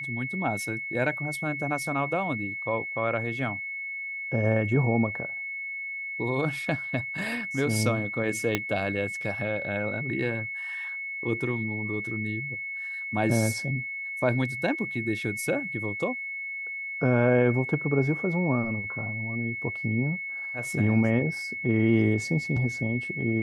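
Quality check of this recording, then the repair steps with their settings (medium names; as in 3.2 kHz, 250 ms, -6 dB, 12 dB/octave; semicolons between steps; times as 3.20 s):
whine 2.2 kHz -32 dBFS
8.55 s: pop -9 dBFS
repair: de-click; band-stop 2.2 kHz, Q 30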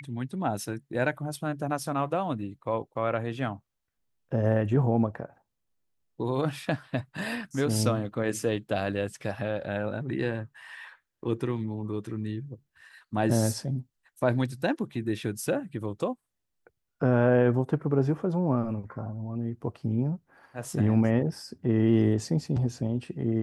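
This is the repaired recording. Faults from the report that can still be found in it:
8.55 s: pop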